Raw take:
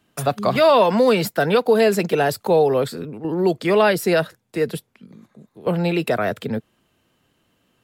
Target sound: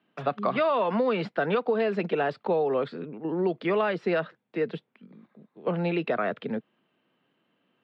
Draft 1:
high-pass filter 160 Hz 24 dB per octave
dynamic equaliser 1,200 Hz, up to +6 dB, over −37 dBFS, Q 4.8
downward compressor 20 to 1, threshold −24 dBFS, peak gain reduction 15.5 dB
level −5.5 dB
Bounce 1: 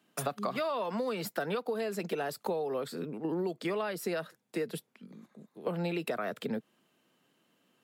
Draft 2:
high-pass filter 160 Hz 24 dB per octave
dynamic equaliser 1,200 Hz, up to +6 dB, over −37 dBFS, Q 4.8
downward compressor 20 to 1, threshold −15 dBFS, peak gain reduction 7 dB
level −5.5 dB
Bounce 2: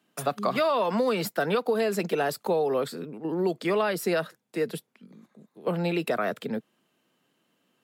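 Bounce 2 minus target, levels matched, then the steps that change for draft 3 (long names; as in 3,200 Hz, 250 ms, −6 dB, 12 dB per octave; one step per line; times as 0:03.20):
4,000 Hz band +4.5 dB
add after dynamic equaliser: low-pass filter 3,300 Hz 24 dB per octave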